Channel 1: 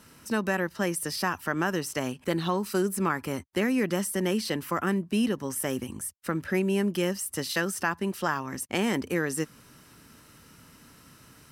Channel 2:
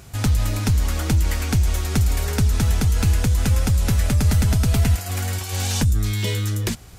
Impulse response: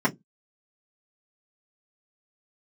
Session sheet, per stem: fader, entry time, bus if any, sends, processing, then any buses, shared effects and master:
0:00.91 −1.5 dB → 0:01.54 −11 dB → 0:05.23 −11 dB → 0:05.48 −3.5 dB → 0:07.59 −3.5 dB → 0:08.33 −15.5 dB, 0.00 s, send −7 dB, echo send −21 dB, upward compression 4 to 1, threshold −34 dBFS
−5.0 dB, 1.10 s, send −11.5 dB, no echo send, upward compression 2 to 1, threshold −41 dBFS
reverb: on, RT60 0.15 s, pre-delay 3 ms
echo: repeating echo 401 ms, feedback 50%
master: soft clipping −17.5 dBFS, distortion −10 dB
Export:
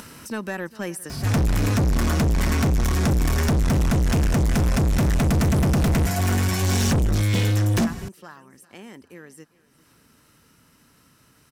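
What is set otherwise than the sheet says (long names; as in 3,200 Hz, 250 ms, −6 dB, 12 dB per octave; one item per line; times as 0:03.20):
stem 1: send off
stem 2 −5.0 dB → +5.5 dB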